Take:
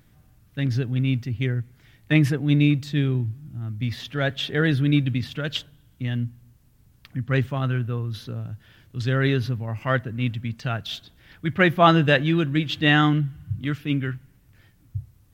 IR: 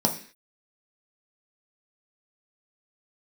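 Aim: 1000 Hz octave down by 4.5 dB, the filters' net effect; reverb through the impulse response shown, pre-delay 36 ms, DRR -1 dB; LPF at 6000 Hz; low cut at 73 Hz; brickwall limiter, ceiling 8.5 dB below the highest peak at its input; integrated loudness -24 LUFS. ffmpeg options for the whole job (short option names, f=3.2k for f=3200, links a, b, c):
-filter_complex "[0:a]highpass=73,lowpass=6k,equalizer=f=1k:t=o:g=-6.5,alimiter=limit=-13dB:level=0:latency=1,asplit=2[a][b];[1:a]atrim=start_sample=2205,adelay=36[c];[b][c]afir=irnorm=-1:irlink=0,volume=-10.5dB[d];[a][d]amix=inputs=2:normalize=0,volume=-5dB"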